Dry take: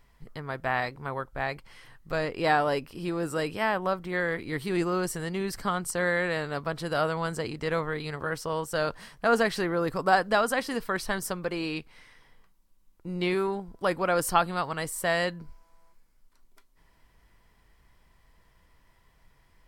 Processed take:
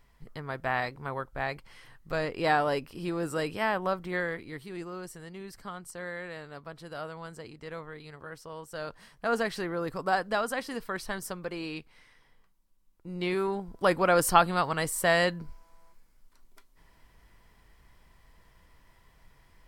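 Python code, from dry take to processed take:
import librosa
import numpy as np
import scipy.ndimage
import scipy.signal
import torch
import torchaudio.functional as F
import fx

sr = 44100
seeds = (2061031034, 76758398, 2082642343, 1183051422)

y = fx.gain(x, sr, db=fx.line((4.15, -1.5), (4.71, -12.0), (8.55, -12.0), (9.33, -5.0), (13.07, -5.0), (13.84, 2.5)))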